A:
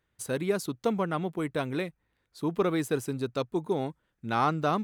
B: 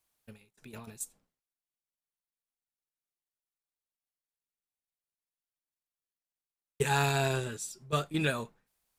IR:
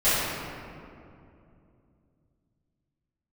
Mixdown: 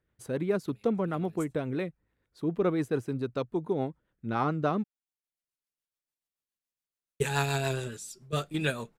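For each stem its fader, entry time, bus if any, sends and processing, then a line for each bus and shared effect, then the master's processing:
+2.0 dB, 0.00 s, no send, high-shelf EQ 2,800 Hz −12 dB
+1.5 dB, 0.40 s, no send, automatic ducking −9 dB, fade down 1.50 s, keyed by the first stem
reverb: not used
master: rotating-speaker cabinet horn 7 Hz

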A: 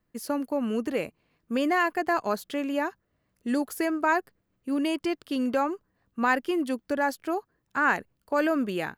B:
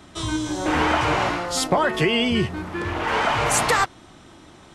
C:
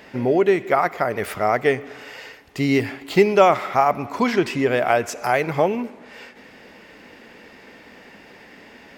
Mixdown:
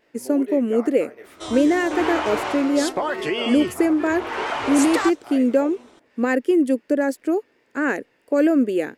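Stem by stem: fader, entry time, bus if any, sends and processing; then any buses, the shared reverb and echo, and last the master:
−4.5 dB, 0.00 s, no send, graphic EQ with 10 bands 125 Hz +9 dB, 250 Hz +12 dB, 500 Hz +12 dB, 1,000 Hz −7 dB, 2,000 Hz +7 dB, 4,000 Hz −3 dB, 8,000 Hz +11 dB
−5.0 dB, 1.25 s, no send, no processing
−15.0 dB, 0.00 s, no send, notch filter 780 Hz, Q 12; micro pitch shift up and down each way 52 cents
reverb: not used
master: low shelf with overshoot 240 Hz −8 dB, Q 1.5; pitch vibrato 4.5 Hz 37 cents

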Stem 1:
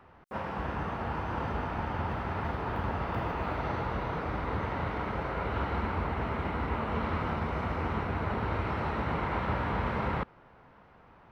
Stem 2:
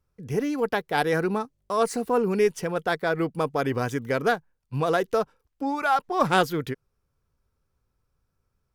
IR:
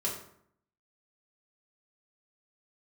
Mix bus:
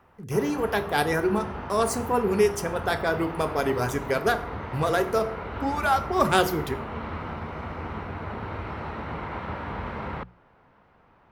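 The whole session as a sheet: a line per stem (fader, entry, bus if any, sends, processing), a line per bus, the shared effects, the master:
−2.0 dB, 0.00 s, no send, mains-hum notches 60/120/180 Hz
−3.0 dB, 0.00 s, send −8 dB, high-shelf EQ 6,400 Hz +8.5 dB; reverb reduction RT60 0.65 s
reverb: on, RT60 0.65 s, pre-delay 3 ms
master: no processing

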